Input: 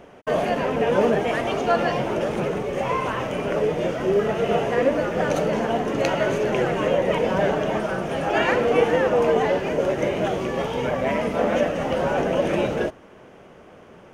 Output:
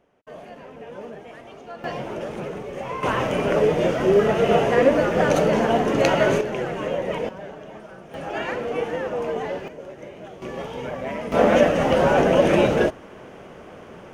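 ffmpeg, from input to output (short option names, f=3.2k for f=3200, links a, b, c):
-af "asetnsamples=n=441:p=0,asendcmd='1.84 volume volume -6.5dB;3.03 volume volume 3.5dB;6.41 volume volume -5dB;7.29 volume volume -16dB;8.14 volume volume -7.5dB;9.68 volume volume -16dB;10.42 volume volume -6.5dB;11.32 volume volume 5dB',volume=-18dB"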